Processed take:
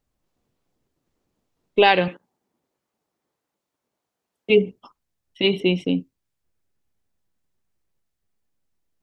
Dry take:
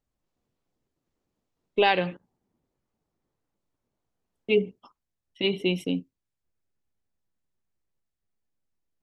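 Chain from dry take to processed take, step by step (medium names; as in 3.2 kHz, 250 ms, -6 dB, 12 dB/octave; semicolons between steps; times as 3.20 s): 2.08–4.50 s: high-pass 450 Hz 6 dB/octave; 5.60–6.00 s: distance through air 120 m; trim +6 dB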